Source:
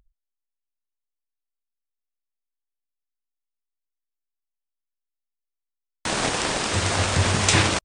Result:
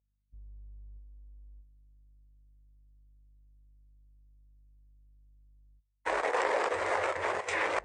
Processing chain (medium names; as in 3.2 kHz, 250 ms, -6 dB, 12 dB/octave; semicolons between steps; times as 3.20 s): local Wiener filter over 25 samples; hum 50 Hz, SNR 12 dB; dynamic bell 320 Hz, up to +6 dB, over -41 dBFS, Q 1.1; reverse; compression 10:1, threshold -35 dBFS, peak gain reduction 22.5 dB; reverse; echo whose repeats swap between lows and highs 322 ms, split 880 Hz, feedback 56%, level -6.5 dB; level held to a coarse grid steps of 10 dB; graphic EQ 125/250/500/1000/2000/8000 Hz -10/-10/+9/+7/+12/+4 dB; gate -46 dBFS, range -13 dB; high-pass 96 Hz 6 dB/octave; spectral contrast expander 1.5:1; trim +4 dB